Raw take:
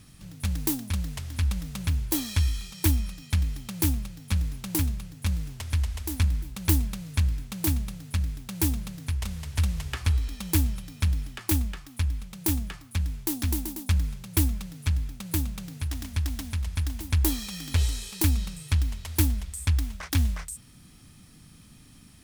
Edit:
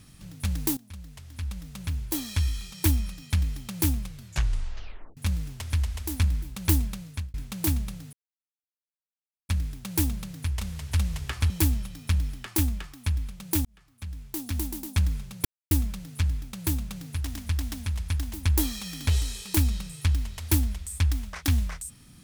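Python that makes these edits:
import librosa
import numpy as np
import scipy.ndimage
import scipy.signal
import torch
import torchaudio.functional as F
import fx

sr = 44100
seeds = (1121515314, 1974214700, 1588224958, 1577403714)

y = fx.edit(x, sr, fx.fade_in_from(start_s=0.77, length_s=2.06, floor_db=-17.5),
    fx.tape_stop(start_s=4.0, length_s=1.17),
    fx.fade_out_span(start_s=6.75, length_s=0.59, curve='qsin'),
    fx.insert_silence(at_s=8.13, length_s=1.36),
    fx.cut(start_s=10.14, length_s=0.29),
    fx.fade_in_span(start_s=12.58, length_s=1.28),
    fx.insert_silence(at_s=14.38, length_s=0.26), tone=tone)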